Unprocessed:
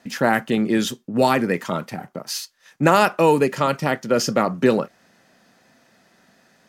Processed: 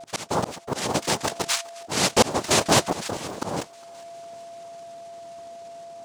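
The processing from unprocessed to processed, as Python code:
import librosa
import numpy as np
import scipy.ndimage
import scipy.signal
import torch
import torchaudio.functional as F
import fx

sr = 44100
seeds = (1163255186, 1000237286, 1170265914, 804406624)

p1 = fx.speed_glide(x, sr, from_pct=168, to_pct=53)
p2 = fx.noise_vocoder(p1, sr, seeds[0], bands=2)
p3 = p2 + 10.0 ** (-42.0 / 20.0) * np.sin(2.0 * np.pi * 680.0 * np.arange(len(p2)) / sr)
p4 = np.where(np.abs(p3) >= 10.0 ** (-26.5 / 20.0), p3, 0.0)
p5 = p3 + F.gain(torch.from_numpy(p4), -7.0).numpy()
p6 = fx.auto_swell(p5, sr, attack_ms=693.0)
p7 = p6 + fx.echo_thinned(p6, sr, ms=408, feedback_pct=49, hz=750.0, wet_db=-20, dry=0)
y = F.gain(torch.from_numpy(p7), 4.0).numpy()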